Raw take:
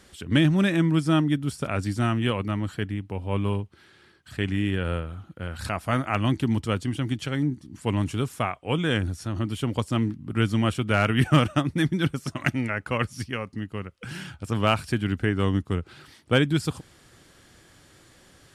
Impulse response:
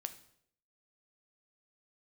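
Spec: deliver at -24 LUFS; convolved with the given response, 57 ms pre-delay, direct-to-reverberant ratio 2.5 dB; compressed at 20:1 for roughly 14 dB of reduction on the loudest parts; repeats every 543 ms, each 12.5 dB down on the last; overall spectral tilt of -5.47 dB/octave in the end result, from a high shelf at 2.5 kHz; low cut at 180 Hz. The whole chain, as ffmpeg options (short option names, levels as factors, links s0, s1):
-filter_complex "[0:a]highpass=180,highshelf=f=2500:g=-8,acompressor=threshold=0.0316:ratio=20,aecho=1:1:543|1086|1629:0.237|0.0569|0.0137,asplit=2[s0][s1];[1:a]atrim=start_sample=2205,adelay=57[s2];[s1][s2]afir=irnorm=-1:irlink=0,volume=1[s3];[s0][s3]amix=inputs=2:normalize=0,volume=3.35"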